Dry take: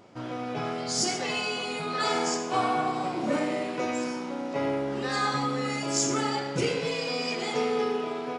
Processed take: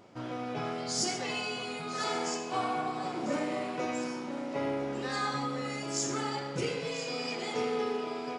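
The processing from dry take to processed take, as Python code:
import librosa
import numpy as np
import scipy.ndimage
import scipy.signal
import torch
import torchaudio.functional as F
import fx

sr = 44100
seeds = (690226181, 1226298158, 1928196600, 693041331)

p1 = fx.rider(x, sr, range_db=4, speed_s=2.0)
p2 = p1 + fx.echo_single(p1, sr, ms=998, db=-13.5, dry=0)
y = F.gain(torch.from_numpy(p2), -5.5).numpy()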